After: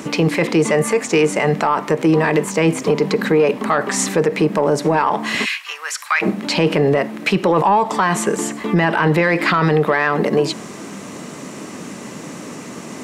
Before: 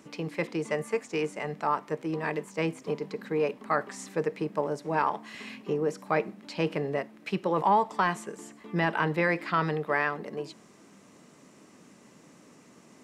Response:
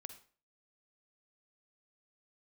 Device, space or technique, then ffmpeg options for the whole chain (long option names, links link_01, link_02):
mastering chain: -filter_complex "[0:a]asplit=3[link_01][link_02][link_03];[link_01]afade=type=out:start_time=5.44:duration=0.02[link_04];[link_02]highpass=frequency=1400:width=0.5412,highpass=frequency=1400:width=1.3066,afade=type=in:start_time=5.44:duration=0.02,afade=type=out:start_time=6.21:duration=0.02[link_05];[link_03]afade=type=in:start_time=6.21:duration=0.02[link_06];[link_04][link_05][link_06]amix=inputs=3:normalize=0,highpass=52,equalizer=frequency=5100:width_type=o:width=0.2:gain=-2,acompressor=threshold=-30dB:ratio=2,asoftclip=type=tanh:threshold=-19.5dB,alimiter=level_in=29dB:limit=-1dB:release=50:level=0:latency=1,volume=-6dB"